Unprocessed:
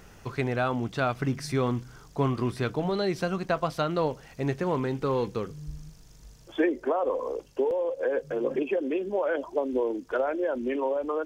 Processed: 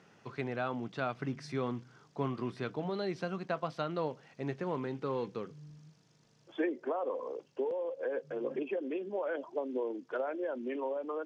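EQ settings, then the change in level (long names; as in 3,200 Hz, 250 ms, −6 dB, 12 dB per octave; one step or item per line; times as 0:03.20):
high-pass filter 130 Hz 24 dB per octave
low-pass filter 5,000 Hz 12 dB per octave
−8.0 dB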